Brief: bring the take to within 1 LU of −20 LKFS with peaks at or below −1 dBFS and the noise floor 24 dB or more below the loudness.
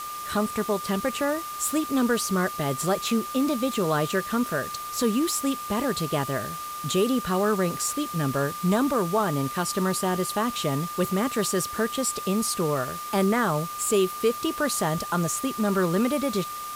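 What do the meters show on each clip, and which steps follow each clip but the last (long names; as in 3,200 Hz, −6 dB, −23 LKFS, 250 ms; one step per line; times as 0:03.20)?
interfering tone 1,200 Hz; level of the tone −33 dBFS; background noise floor −35 dBFS; target noise floor −50 dBFS; integrated loudness −25.5 LKFS; sample peak −11.5 dBFS; target loudness −20.0 LKFS
→ notch filter 1,200 Hz, Q 30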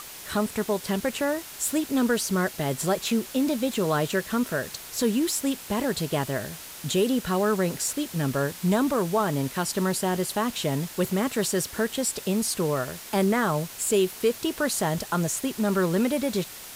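interfering tone none found; background noise floor −42 dBFS; target noise floor −50 dBFS
→ noise reduction from a noise print 8 dB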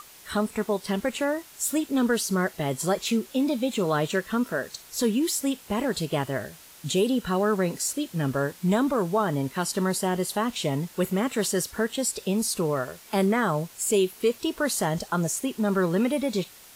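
background noise floor −49 dBFS; target noise floor −51 dBFS
→ noise reduction from a noise print 6 dB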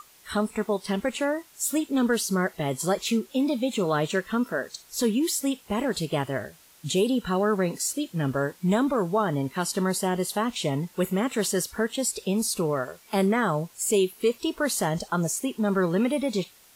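background noise floor −55 dBFS; integrated loudness −26.5 LKFS; sample peak −12.5 dBFS; target loudness −20.0 LKFS
→ level +6.5 dB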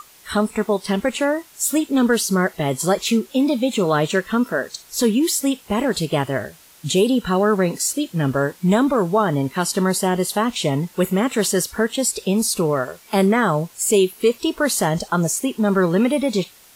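integrated loudness −20.0 LKFS; sample peak −6.0 dBFS; background noise floor −49 dBFS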